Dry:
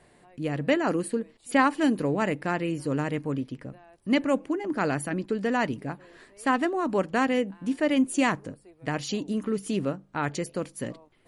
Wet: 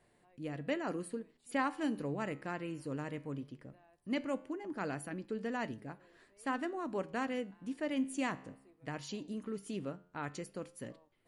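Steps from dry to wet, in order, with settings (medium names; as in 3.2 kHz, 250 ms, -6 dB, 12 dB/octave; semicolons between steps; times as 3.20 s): flange 0.18 Hz, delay 8.6 ms, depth 7.1 ms, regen +87%; trim -7.5 dB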